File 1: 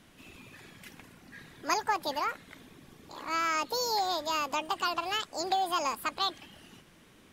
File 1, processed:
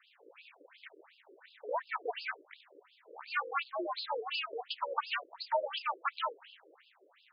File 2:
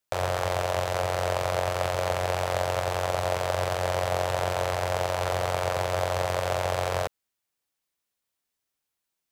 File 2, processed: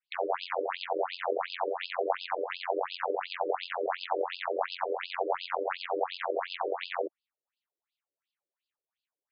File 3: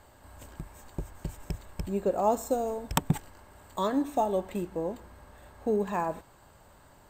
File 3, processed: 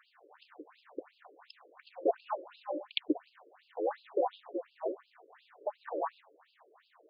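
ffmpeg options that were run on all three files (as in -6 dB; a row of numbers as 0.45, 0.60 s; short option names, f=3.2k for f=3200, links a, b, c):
-af "aeval=exprs='val(0)*sin(2*PI*140*n/s)':c=same,afftfilt=real='re*between(b*sr/1024,410*pow(3700/410,0.5+0.5*sin(2*PI*2.8*pts/sr))/1.41,410*pow(3700/410,0.5+0.5*sin(2*PI*2.8*pts/sr))*1.41)':imag='im*between(b*sr/1024,410*pow(3700/410,0.5+0.5*sin(2*PI*2.8*pts/sr))/1.41,410*pow(3700/410,0.5+0.5*sin(2*PI*2.8*pts/sr))*1.41)':win_size=1024:overlap=0.75,volume=4.5dB"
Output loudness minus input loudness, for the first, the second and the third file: -6.0, -5.5, -6.0 LU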